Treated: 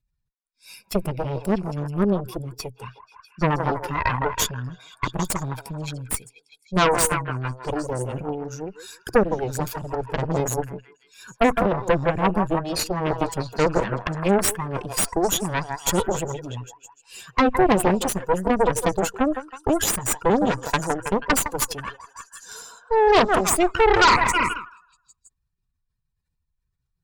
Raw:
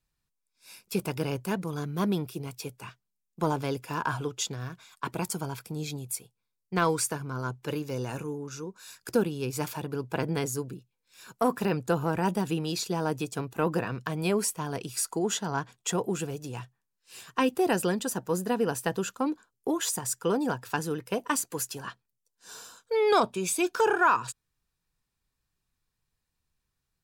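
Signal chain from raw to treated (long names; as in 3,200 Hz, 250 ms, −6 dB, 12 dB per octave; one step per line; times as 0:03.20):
expanding power law on the bin magnitudes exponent 1.8
echo through a band-pass that steps 161 ms, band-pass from 720 Hz, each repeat 0.7 octaves, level −3.5 dB
harmonic generator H 6 −10 dB, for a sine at −12.5 dBFS
level +5.5 dB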